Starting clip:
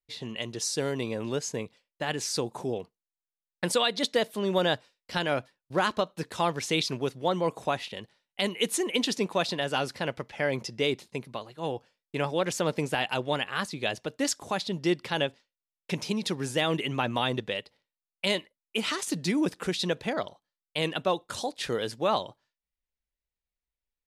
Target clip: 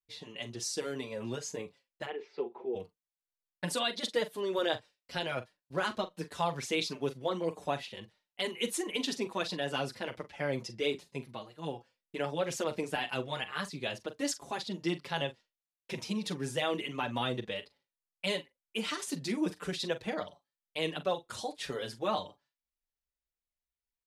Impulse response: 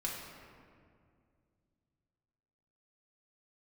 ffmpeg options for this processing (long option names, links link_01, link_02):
-filter_complex "[0:a]asplit=3[link_01][link_02][link_03];[link_01]afade=type=out:start_time=2.05:duration=0.02[link_04];[link_02]highpass=frequency=270:width=0.5412,highpass=frequency=270:width=1.3066,equalizer=frequency=290:width_type=q:width=4:gain=-9,equalizer=frequency=400:width_type=q:width=4:gain=8,equalizer=frequency=610:width_type=q:width=4:gain=-8,equalizer=frequency=1100:width_type=q:width=4:gain=-6,equalizer=frequency=1600:width_type=q:width=4:gain=-9,lowpass=frequency=2400:width=0.5412,lowpass=frequency=2400:width=1.3066,afade=type=in:start_time=2.05:duration=0.02,afade=type=out:start_time=2.74:duration=0.02[link_05];[link_03]afade=type=in:start_time=2.74:duration=0.02[link_06];[link_04][link_05][link_06]amix=inputs=3:normalize=0,asplit=2[link_07][link_08];[link_08]adelay=42,volume=-13dB[link_09];[link_07][link_09]amix=inputs=2:normalize=0,asplit=2[link_10][link_11];[link_11]adelay=5.8,afreqshift=-1.5[link_12];[link_10][link_12]amix=inputs=2:normalize=1,volume=-3dB"